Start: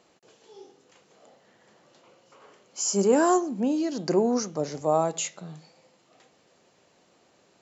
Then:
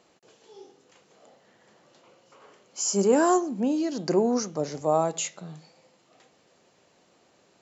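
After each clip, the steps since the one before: no audible change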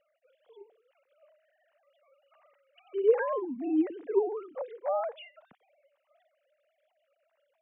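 formants replaced by sine waves; trim -5.5 dB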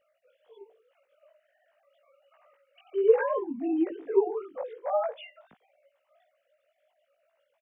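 doubling 18 ms -2 dB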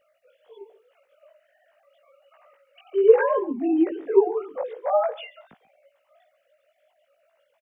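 delay 137 ms -20 dB; trim +6 dB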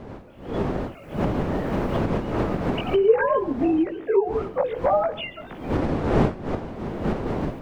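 wind noise 310 Hz -27 dBFS; recorder AGC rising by 25 dB/s; bass shelf 380 Hz -8 dB

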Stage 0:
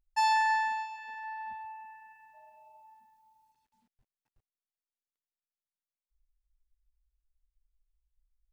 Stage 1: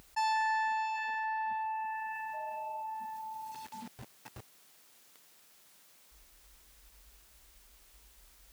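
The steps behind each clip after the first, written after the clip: high-pass 130 Hz 12 dB/octave; level flattener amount 70%; trim -5.5 dB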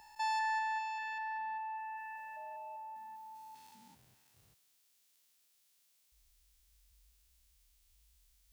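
spectrogram pixelated in time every 200 ms; three bands expanded up and down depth 40%; trim -6 dB

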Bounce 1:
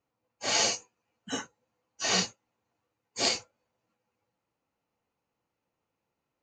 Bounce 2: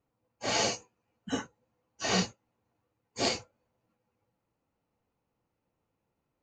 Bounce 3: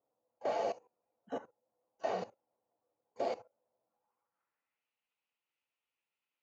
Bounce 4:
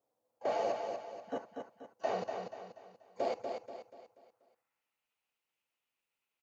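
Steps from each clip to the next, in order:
tilt EQ -2 dB/octave
level held to a coarse grid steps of 17 dB; band-pass sweep 620 Hz -> 2.8 kHz, 3.80–4.91 s; trim +7 dB
feedback delay 241 ms, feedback 41%, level -5.5 dB; trim +1 dB

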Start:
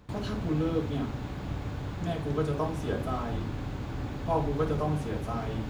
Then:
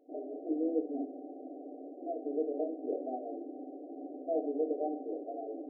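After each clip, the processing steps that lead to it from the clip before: FFT band-pass 250–780 Hz; trim -2 dB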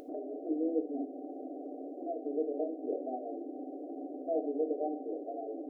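upward compressor, threshold -36 dBFS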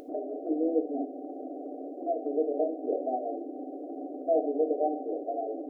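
dynamic bell 700 Hz, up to +6 dB, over -46 dBFS, Q 1.2; trim +2.5 dB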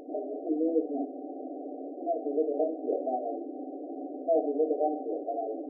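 spectral gate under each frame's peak -20 dB strong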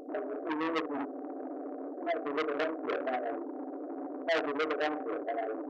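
transformer saturation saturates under 2 kHz

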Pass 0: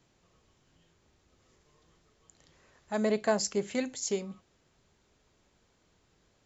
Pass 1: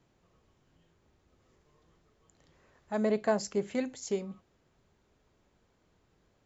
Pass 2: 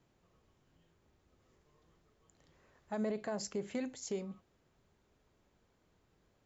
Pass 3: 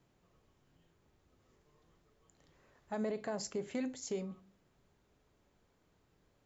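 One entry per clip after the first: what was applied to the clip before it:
treble shelf 2.6 kHz -9 dB
peak limiter -25.5 dBFS, peak gain reduction 10.5 dB; trim -3 dB
reverberation RT60 0.40 s, pre-delay 7 ms, DRR 15 dB

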